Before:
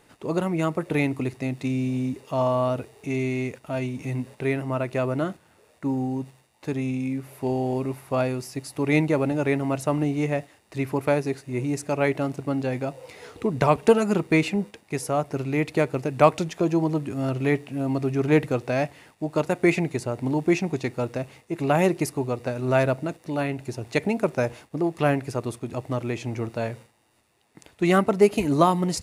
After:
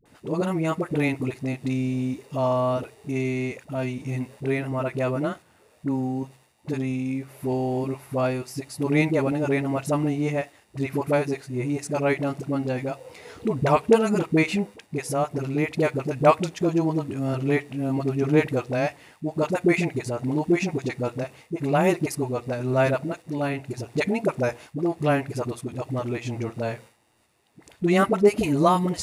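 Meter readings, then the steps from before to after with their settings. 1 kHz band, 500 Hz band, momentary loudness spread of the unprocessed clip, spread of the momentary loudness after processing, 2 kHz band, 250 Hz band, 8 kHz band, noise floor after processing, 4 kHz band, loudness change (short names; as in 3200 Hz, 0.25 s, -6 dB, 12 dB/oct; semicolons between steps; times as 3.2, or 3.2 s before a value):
0.0 dB, 0.0 dB, 10 LU, 10 LU, 0.0 dB, 0.0 dB, -0.5 dB, -59 dBFS, 0.0 dB, 0.0 dB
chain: dispersion highs, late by 56 ms, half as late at 470 Hz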